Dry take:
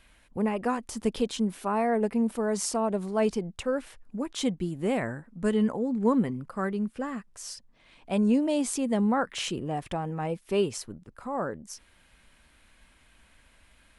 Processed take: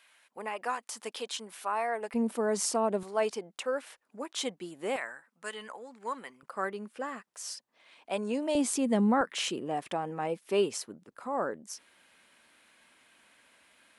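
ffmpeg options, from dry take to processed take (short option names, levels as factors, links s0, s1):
-af "asetnsamples=n=441:p=0,asendcmd='2.14 highpass f 250;3.03 highpass f 510;4.96 highpass f 1100;6.43 highpass f 460;8.55 highpass f 130;9.21 highpass f 280',highpass=790"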